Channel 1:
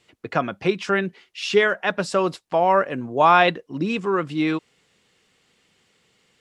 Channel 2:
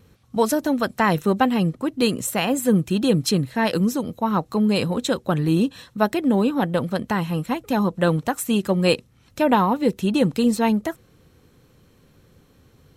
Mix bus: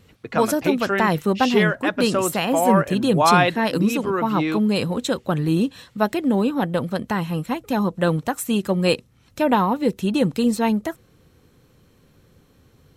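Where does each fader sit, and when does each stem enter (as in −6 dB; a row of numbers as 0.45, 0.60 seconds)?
−1.5, −0.5 decibels; 0.00, 0.00 seconds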